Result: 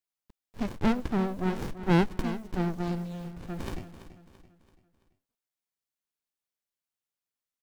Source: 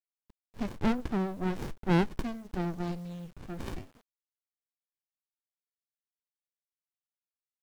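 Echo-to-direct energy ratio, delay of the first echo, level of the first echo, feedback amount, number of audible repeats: -12.5 dB, 0.335 s, -13.5 dB, 44%, 4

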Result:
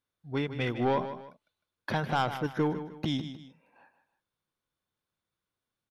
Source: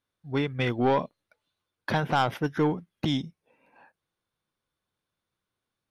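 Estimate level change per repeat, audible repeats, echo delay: -9.5 dB, 2, 0.154 s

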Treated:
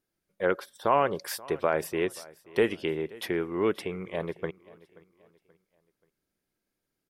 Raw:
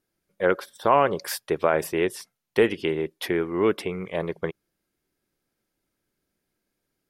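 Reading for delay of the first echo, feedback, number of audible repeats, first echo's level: 0.53 s, 38%, 2, -22.0 dB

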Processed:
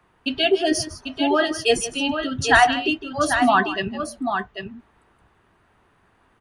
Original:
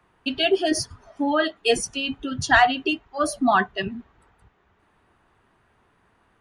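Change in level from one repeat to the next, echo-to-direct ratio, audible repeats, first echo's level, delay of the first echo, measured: no steady repeat, -6.5 dB, 2, -15.0 dB, 0.157 s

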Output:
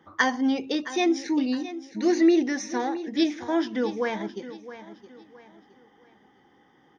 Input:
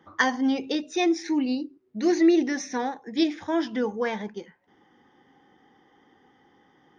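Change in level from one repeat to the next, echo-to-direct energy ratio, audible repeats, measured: -9.5 dB, -13.5 dB, 3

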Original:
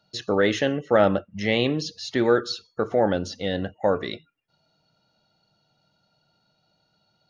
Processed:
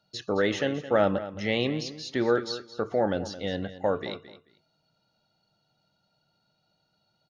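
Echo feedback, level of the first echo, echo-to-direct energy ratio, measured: 19%, -14.0 dB, -14.0 dB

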